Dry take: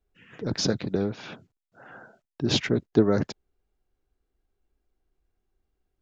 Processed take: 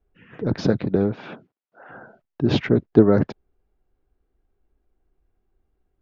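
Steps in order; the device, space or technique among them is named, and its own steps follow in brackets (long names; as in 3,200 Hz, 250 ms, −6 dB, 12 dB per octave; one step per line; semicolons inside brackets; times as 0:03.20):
phone in a pocket (low-pass filter 3,800 Hz 12 dB per octave; high-shelf EQ 2,400 Hz −11.5 dB)
0:01.15–0:01.88: high-pass filter 130 Hz → 480 Hz 12 dB per octave
level +6.5 dB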